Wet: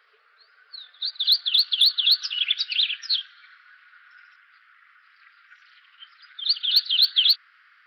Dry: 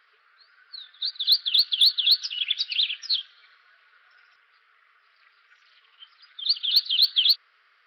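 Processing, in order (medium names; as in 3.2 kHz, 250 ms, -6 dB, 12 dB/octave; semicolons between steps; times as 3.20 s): high-pass sweep 440 Hz -> 1.5 kHz, 0.51–2.72 s; 1.20–2.55 s: three bands compressed up and down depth 40%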